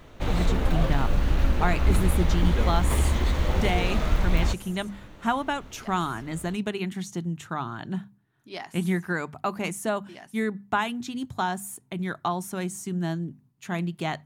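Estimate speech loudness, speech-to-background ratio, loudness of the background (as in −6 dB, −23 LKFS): −30.5 LKFS, −4.0 dB, −26.5 LKFS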